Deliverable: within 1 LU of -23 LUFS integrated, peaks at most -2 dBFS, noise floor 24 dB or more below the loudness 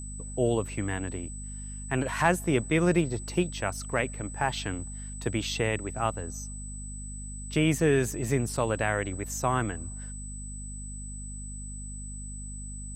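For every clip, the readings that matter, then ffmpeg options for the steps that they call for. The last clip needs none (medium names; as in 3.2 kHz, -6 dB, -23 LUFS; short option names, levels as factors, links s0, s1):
hum 50 Hz; highest harmonic 250 Hz; hum level -37 dBFS; steady tone 8 kHz; tone level -42 dBFS; loudness -30.5 LUFS; peak level -8.5 dBFS; loudness target -23.0 LUFS
-> -af "bandreject=f=50:t=h:w=4,bandreject=f=100:t=h:w=4,bandreject=f=150:t=h:w=4,bandreject=f=200:t=h:w=4,bandreject=f=250:t=h:w=4"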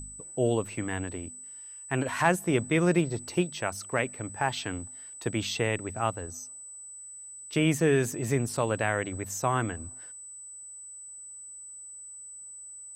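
hum not found; steady tone 8 kHz; tone level -42 dBFS
-> -af "bandreject=f=8000:w=30"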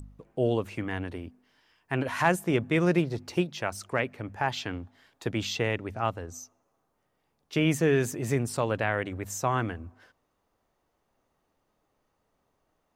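steady tone not found; loudness -29.0 LUFS; peak level -8.5 dBFS; loudness target -23.0 LUFS
-> -af "volume=2"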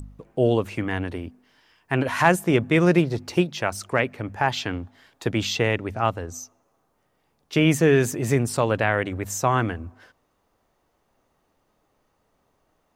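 loudness -23.0 LUFS; peak level -2.5 dBFS; noise floor -70 dBFS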